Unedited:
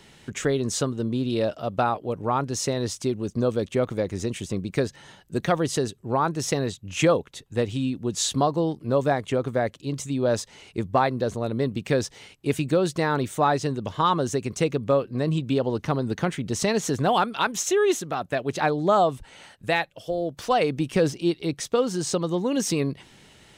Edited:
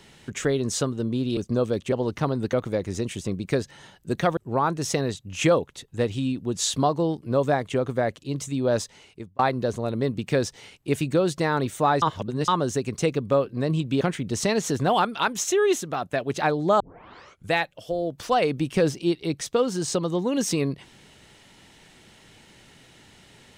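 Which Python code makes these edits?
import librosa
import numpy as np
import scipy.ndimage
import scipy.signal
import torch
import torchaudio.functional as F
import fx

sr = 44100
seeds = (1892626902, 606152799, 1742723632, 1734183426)

y = fx.edit(x, sr, fx.cut(start_s=1.37, length_s=1.86),
    fx.cut(start_s=5.62, length_s=0.33),
    fx.fade_out_span(start_s=10.4, length_s=0.57),
    fx.reverse_span(start_s=13.6, length_s=0.46),
    fx.move(start_s=15.59, length_s=0.61, to_s=3.78),
    fx.tape_start(start_s=18.99, length_s=0.71), tone=tone)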